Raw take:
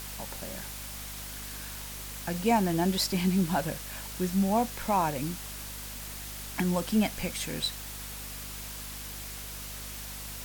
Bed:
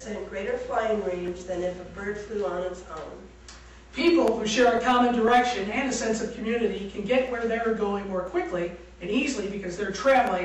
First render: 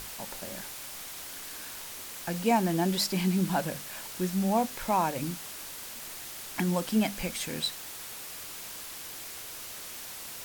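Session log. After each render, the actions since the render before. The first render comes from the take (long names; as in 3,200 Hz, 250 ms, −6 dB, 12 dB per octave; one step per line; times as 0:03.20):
mains-hum notches 50/100/150/200/250 Hz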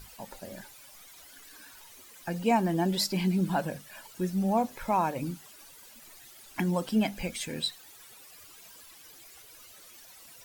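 broadband denoise 14 dB, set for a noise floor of −42 dBFS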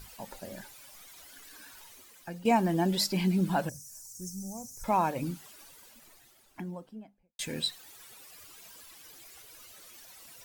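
0:01.83–0:02.45: fade out, to −11 dB
0:03.69–0:04.84: drawn EQ curve 120 Hz 0 dB, 200 Hz −13 dB, 3,500 Hz −30 dB, 5,800 Hz +11 dB, 13,000 Hz +1 dB
0:05.43–0:07.39: fade out and dull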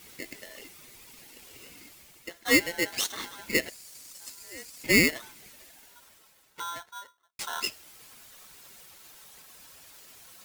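high-pass filter sweep 880 Hz → 100 Hz, 0:05.49–0:06.13
ring modulator with a square carrier 1,200 Hz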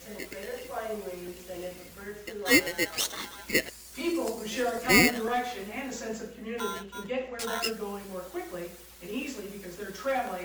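mix in bed −9.5 dB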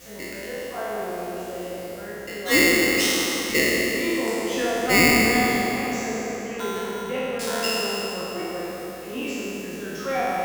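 peak hold with a decay on every bin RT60 2.87 s
delay with a low-pass on its return 190 ms, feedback 70%, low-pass 1,400 Hz, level −6 dB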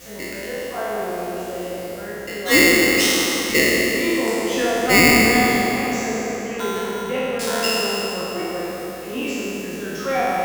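level +4 dB
brickwall limiter −2 dBFS, peak gain reduction 1.5 dB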